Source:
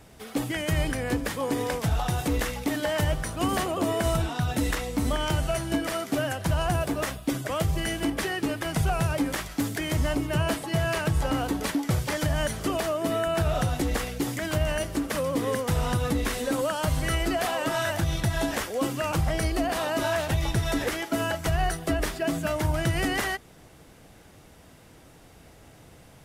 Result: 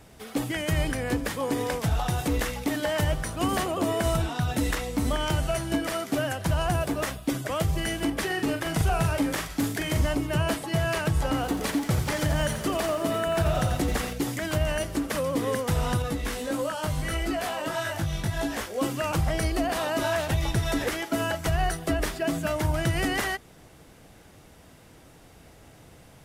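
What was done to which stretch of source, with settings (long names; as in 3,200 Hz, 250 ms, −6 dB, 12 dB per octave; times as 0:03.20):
0:08.26–0:10.06: double-tracking delay 43 ms −6 dB
0:11.35–0:14.13: feedback echo at a low word length 86 ms, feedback 55%, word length 8 bits, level −9 dB
0:16.02–0:18.78: chorus effect 1.6 Hz, delay 17.5 ms, depth 2.8 ms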